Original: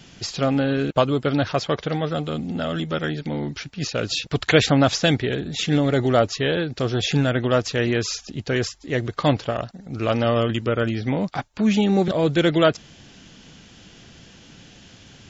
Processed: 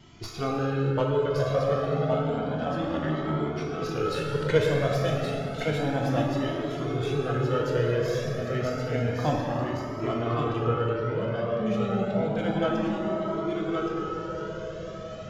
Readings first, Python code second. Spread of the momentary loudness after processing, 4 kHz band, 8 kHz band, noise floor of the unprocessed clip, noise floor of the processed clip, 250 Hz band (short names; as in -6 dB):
6 LU, -12.5 dB, n/a, -49 dBFS, -37 dBFS, -6.5 dB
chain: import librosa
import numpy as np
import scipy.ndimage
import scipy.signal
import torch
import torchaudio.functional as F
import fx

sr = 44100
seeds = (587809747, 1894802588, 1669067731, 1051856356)

y = fx.tracing_dist(x, sr, depth_ms=0.04)
y = fx.peak_eq(y, sr, hz=700.0, db=2.5, octaves=2.0)
y = fx.rev_plate(y, sr, seeds[0], rt60_s=4.1, hf_ratio=0.45, predelay_ms=0, drr_db=-2.0)
y = fx.rider(y, sr, range_db=10, speed_s=2.0)
y = fx.high_shelf(y, sr, hz=2400.0, db=-9.0)
y = fx.comb_fb(y, sr, f0_hz=430.0, decay_s=0.37, harmonics='odd', damping=0.0, mix_pct=80)
y = y + 10.0 ** (-4.5 / 20.0) * np.pad(y, (int(1119 * sr / 1000.0), 0))[:len(y)]
y = fx.comb_cascade(y, sr, direction='rising', hz=0.3)
y = y * 10.0 ** (6.0 / 20.0)